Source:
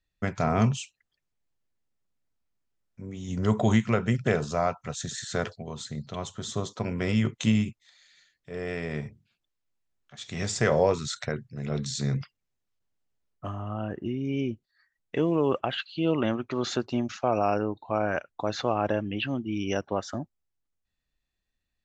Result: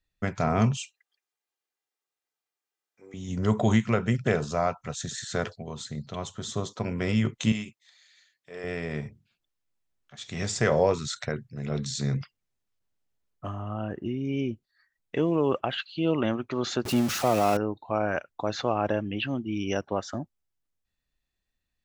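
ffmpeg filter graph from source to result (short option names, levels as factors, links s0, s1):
-filter_complex "[0:a]asettb=1/sr,asplit=3[s0][s1][s2];[s0]atrim=end=0.774[s3];[s1]atrim=start=0.77:end=3.14,asetpts=PTS-STARTPTS,afade=t=in:d=0.004:c=qsin,afade=t=out:st=2.366:d=0.004:c=qsin,highpass=560,aecho=1:1:2.5:0.51,atrim=end_sample=104517[s4];[s2]atrim=start=3.136[s5];[s3][s4]acrossfade=d=0.004:c1=hsin:c2=qsin[s6];[s6][s5]acrossfade=d=0.004:c1=qsin:c2=hsin,asettb=1/sr,asplit=3[s7][s8][s9];[s7]atrim=end=7.524[s10];[s8]atrim=start=7.52:end=8.64,asetpts=PTS-STARTPTS,afade=t=in:d=0.004:c=qsin,afade=t=out:st=1.116:d=0.004:c=qsin,highpass=f=580:p=1,bandreject=f=1400:w=27[s11];[s9]atrim=start=8.636[s12];[s10][s11]acrossfade=d=0.004:c1=hsin:c2=qsin[s13];[s13][s12]acrossfade=d=0.004:c1=qsin:c2=hsin,asettb=1/sr,asplit=3[s14][s15][s16];[s14]atrim=end=16.854[s17];[s15]atrim=start=16.85:end=17.57,asetpts=PTS-STARTPTS,afade=t=in:d=0.004:c=qsin,afade=t=out:st=0.716:d=0.004:c=qsin,aeval=exprs='val(0)+0.5*0.0355*sgn(val(0))':c=same,highpass=f=170:p=1,bass=f=250:g=7,treble=f=4000:g=4[s18];[s16]atrim=start=17.566[s19];[s17][s18]acrossfade=d=0.004:c1=hsin:c2=qsin[s20];[s20][s19]acrossfade=d=0.004:c1=qsin:c2=hsin"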